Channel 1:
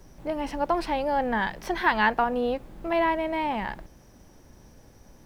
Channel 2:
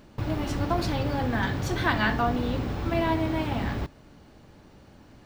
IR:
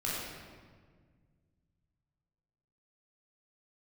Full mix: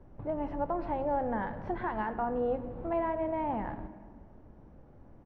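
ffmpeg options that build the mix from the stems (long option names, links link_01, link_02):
-filter_complex "[0:a]alimiter=limit=-17dB:level=0:latency=1:release=155,volume=-5dB,asplit=2[link_01][link_02];[link_02]volume=-15dB[link_03];[1:a]acompressor=threshold=-33dB:ratio=6,adelay=11,volume=-8.5dB[link_04];[2:a]atrim=start_sample=2205[link_05];[link_03][link_05]afir=irnorm=-1:irlink=0[link_06];[link_01][link_04][link_06]amix=inputs=3:normalize=0,lowpass=1100"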